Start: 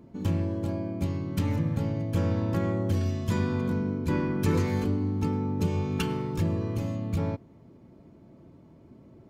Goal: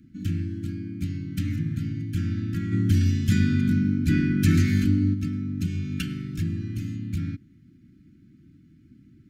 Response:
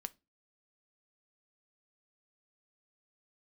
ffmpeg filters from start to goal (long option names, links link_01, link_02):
-filter_complex "[0:a]asplit=3[link_01][link_02][link_03];[link_01]afade=type=out:start_time=2.71:duration=0.02[link_04];[link_02]acontrast=74,afade=type=in:start_time=2.71:duration=0.02,afade=type=out:start_time=5.13:duration=0.02[link_05];[link_03]afade=type=in:start_time=5.13:duration=0.02[link_06];[link_04][link_05][link_06]amix=inputs=3:normalize=0,asuperstop=centerf=680:order=12:qfactor=0.61"